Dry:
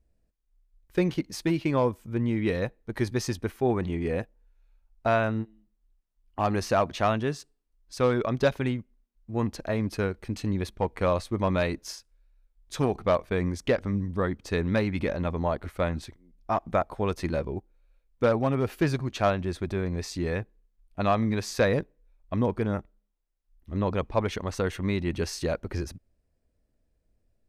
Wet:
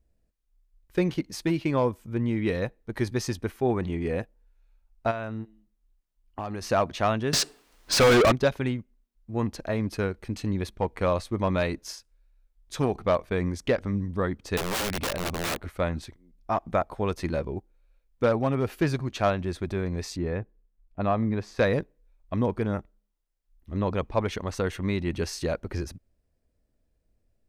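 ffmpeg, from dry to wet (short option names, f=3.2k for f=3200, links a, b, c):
-filter_complex "[0:a]asplit=3[a][b][c];[a]afade=t=out:st=5.1:d=0.02[d];[b]acompressor=threshold=-29dB:ratio=6:attack=3.2:release=140:knee=1:detection=peak,afade=t=in:st=5.1:d=0.02,afade=t=out:st=6.67:d=0.02[e];[c]afade=t=in:st=6.67:d=0.02[f];[d][e][f]amix=inputs=3:normalize=0,asettb=1/sr,asplit=3[g][h][i];[g]atrim=end=7.334[j];[h]atrim=start=7.33:end=8.32,asetpts=PTS-STARTPTS,afade=t=in:d=0.004:c=qsin,afade=t=out:st=0.986:d=0.004:c=qsin,asplit=2[k][l];[l]highpass=f=720:p=1,volume=39dB,asoftclip=type=tanh:threshold=-11.5dB[m];[k][m]amix=inputs=2:normalize=0,lowpass=f=4.2k:p=1,volume=-6dB[n];[i]atrim=start=8.316[o];[j][n]acrossfade=d=0.004:c1=hsin:c2=qsin[p];[p][o]acrossfade=d=0.004:c1=qsin:c2=hsin,asettb=1/sr,asplit=3[q][r][s];[q]atrim=end=14.574[t];[r]atrim=start=14.57:end=15.67,asetpts=PTS-STARTPTS,afade=t=in:d=0.004:c=qsin,afade=t=out:st=1.096:d=0.004:c=qsin,aeval=exprs='(mod(15*val(0)+1,2)-1)/15':c=same[u];[s]atrim=start=15.666[v];[t][u]acrossfade=d=0.004:c1=hsin:c2=qsin[w];[w][v]acrossfade=d=0.004:c1=qsin:c2=hsin,asettb=1/sr,asplit=3[x][y][z];[x]atrim=end=20.164[aa];[y]atrim=start=20.16:end=21.59,asetpts=PTS-STARTPTS,afade=t=in:d=0.004:c=qsin,afade=t=out:st=1.426:d=0.004:c=qsin,lowpass=f=1.2k:p=1[ab];[z]atrim=start=21.586[ac];[aa][ab]acrossfade=d=0.004:c1=hsin:c2=qsin[ad];[ad][ac]acrossfade=d=0.004:c1=qsin:c2=hsin"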